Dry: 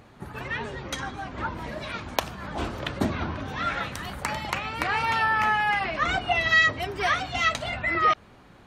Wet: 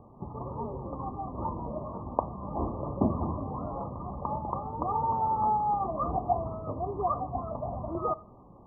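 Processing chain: Chebyshev low-pass 1.2 kHz, order 10; Schroeder reverb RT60 0.37 s, combs from 27 ms, DRR 16.5 dB

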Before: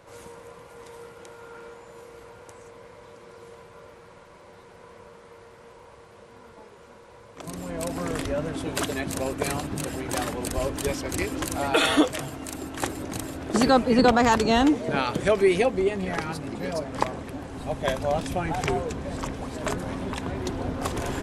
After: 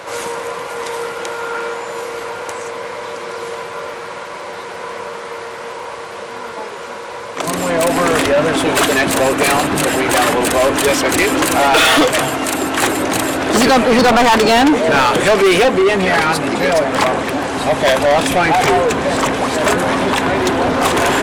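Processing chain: dynamic bell 5.2 kHz, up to -5 dB, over -50 dBFS, Q 1.6; overdrive pedal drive 31 dB, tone 7 kHz, clips at -3.5 dBFS

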